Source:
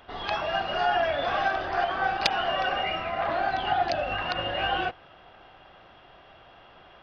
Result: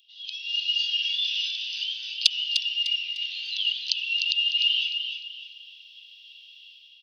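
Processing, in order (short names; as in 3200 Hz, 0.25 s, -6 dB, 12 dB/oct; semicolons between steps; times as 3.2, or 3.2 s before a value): Chebyshev high-pass 2800 Hz, order 6; AGC gain up to 13 dB; feedback echo 0.301 s, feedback 34%, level -7 dB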